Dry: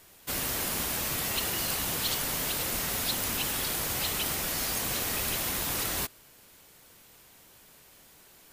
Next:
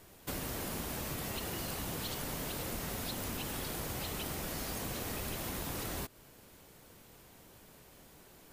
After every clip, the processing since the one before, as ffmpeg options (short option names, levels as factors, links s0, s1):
-af "tiltshelf=f=970:g=5,acompressor=threshold=0.0158:ratio=5"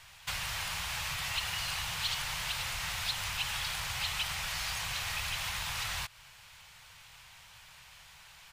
-af "firequalizer=gain_entry='entry(100,0);entry(170,-7);entry(250,-29);entry(510,-12);entry(860,4);entry(2500,12);entry(13000,-5)':delay=0.05:min_phase=1"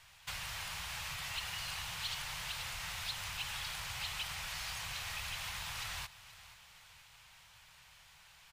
-af "asoftclip=type=hard:threshold=0.0562,aecho=1:1:478|956|1434|1912:0.141|0.072|0.0367|0.0187,volume=0.501"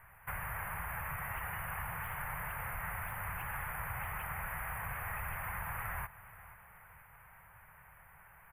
-af "asuperstop=centerf=5000:order=8:qfactor=0.55,volume=2.11"